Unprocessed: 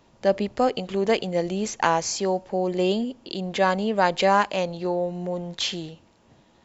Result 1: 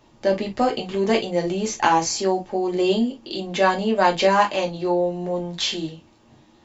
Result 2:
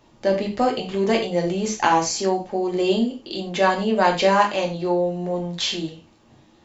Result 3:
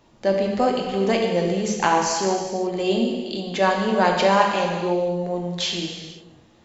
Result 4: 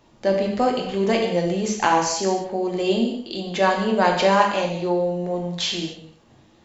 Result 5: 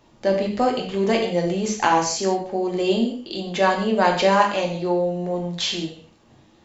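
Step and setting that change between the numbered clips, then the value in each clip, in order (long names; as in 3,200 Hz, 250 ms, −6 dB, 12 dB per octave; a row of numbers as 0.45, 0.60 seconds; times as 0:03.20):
reverb whose tail is shaped and stops, gate: 80, 130, 530, 290, 200 milliseconds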